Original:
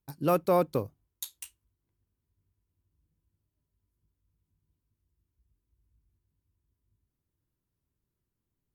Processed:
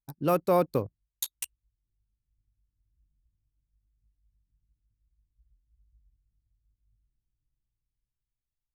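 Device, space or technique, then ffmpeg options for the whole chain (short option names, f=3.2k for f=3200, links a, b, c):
voice memo with heavy noise removal: -af "anlmdn=0.1,dynaudnorm=f=420:g=7:m=15dB"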